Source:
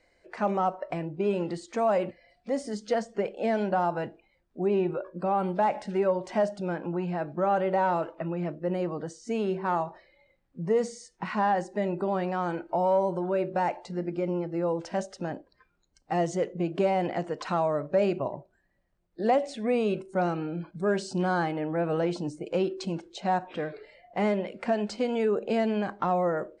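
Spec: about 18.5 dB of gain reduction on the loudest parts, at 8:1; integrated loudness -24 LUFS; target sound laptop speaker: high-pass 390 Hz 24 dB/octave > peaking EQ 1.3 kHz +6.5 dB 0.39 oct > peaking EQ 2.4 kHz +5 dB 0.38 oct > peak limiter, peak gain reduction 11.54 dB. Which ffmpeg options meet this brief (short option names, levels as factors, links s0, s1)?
-af "acompressor=threshold=0.01:ratio=8,highpass=f=390:w=0.5412,highpass=f=390:w=1.3066,equalizer=f=1300:t=o:w=0.39:g=6.5,equalizer=f=2400:t=o:w=0.38:g=5,volume=14.1,alimiter=limit=0.224:level=0:latency=1"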